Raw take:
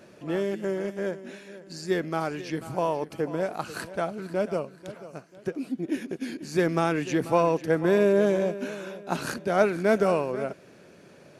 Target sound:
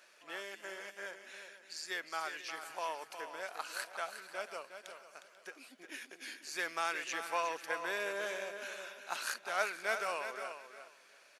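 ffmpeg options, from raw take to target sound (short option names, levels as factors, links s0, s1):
-af "highpass=1300,aecho=1:1:359|718|1077:0.355|0.0639|0.0115,volume=0.75"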